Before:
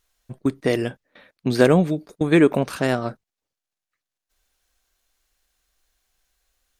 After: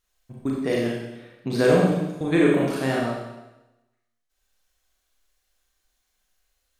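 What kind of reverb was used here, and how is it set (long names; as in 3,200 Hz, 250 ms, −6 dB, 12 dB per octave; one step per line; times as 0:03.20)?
four-comb reverb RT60 1 s, combs from 30 ms, DRR −3.5 dB
level −7 dB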